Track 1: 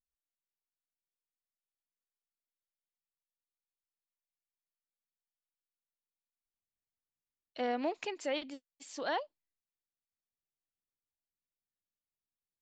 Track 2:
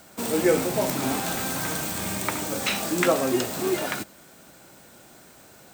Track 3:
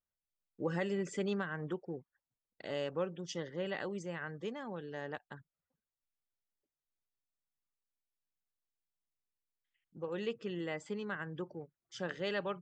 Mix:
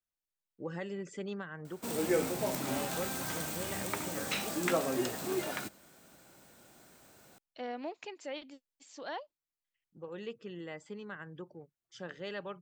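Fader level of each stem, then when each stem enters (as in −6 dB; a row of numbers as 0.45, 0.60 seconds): −6.0, −9.0, −4.5 decibels; 0.00, 1.65, 0.00 seconds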